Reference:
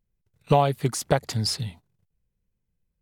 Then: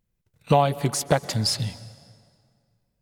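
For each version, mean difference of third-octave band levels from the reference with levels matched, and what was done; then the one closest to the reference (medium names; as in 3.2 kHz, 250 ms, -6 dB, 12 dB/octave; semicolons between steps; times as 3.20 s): 4.5 dB: bass shelf 66 Hz -8 dB; band-stop 410 Hz, Q 12; in parallel at -2 dB: compression, threshold -30 dBFS, peak gain reduction 15 dB; on the sum: plate-style reverb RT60 2.1 s, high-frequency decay 0.75×, pre-delay 110 ms, DRR 17 dB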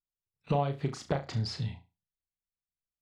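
6.5 dB: spectral noise reduction 27 dB; compression 2.5:1, threshold -31 dBFS, peak gain reduction 11.5 dB; distance through air 150 m; flutter echo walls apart 6 m, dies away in 0.26 s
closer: first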